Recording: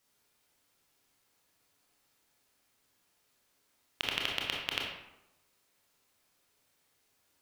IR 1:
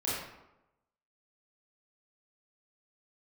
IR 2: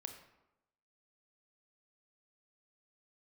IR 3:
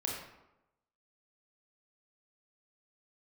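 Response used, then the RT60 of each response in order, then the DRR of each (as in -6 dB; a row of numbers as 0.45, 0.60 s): 3; 0.95, 0.95, 0.95 s; -9.0, 5.5, -2.5 dB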